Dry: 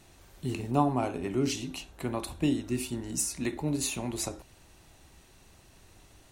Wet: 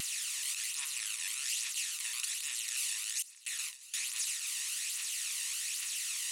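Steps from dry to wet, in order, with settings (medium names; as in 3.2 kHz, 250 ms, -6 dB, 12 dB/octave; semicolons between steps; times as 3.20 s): spectral levelling over time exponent 0.2; 3.22–3.94 s: gate with hold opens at -10 dBFS; inverse Chebyshev high-pass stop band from 760 Hz, stop band 50 dB; peak limiter -19 dBFS, peak gain reduction 8.5 dB; phaser 1.2 Hz, delay 1.1 ms, feedback 44%; vibrato with a chosen wave saw down 4.7 Hz, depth 100 cents; trim -6 dB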